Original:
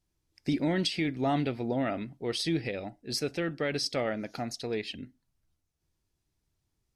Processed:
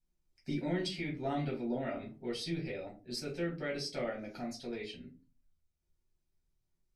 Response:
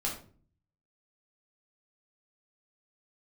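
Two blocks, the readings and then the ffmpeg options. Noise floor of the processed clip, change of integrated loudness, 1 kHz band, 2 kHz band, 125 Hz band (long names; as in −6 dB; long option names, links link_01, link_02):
−82 dBFS, −6.5 dB, −7.5 dB, −6.5 dB, −5.5 dB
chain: -filter_complex "[1:a]atrim=start_sample=2205,asetrate=79380,aresample=44100[link_01];[0:a][link_01]afir=irnorm=-1:irlink=0,volume=-7dB"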